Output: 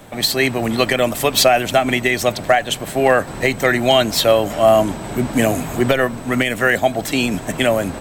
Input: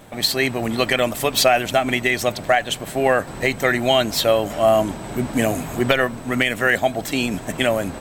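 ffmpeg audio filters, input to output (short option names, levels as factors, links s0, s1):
-filter_complex "[0:a]acrossover=split=190|820|5700[s0][s1][s2][s3];[s2]alimiter=limit=0.299:level=0:latency=1:release=219[s4];[s0][s1][s4][s3]amix=inputs=4:normalize=0,asoftclip=type=hard:threshold=0.473,volume=1.5"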